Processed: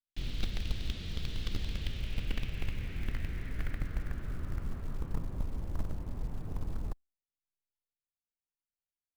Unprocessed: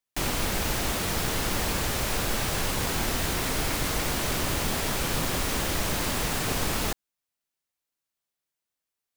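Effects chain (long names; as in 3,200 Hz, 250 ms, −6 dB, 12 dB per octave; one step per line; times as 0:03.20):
guitar amp tone stack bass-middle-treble 10-0-1
in parallel at −10 dB: bit reduction 5 bits
on the sum: low-pass filter sweep 3,600 Hz → 940 Hz, 0:01.62–0:05.50
floating-point word with a short mantissa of 4 bits
level +4 dB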